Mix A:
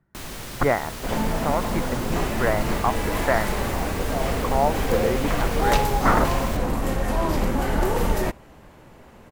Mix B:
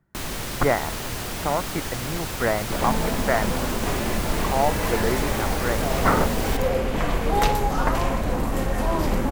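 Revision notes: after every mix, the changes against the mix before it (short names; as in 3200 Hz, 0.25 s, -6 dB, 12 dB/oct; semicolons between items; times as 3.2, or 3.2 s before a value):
first sound +5.0 dB; second sound: entry +1.70 s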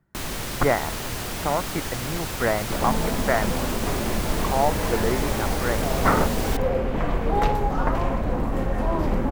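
second sound: add bell 11000 Hz -14.5 dB 2.8 oct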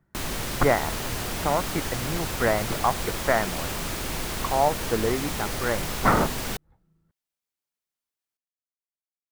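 second sound: muted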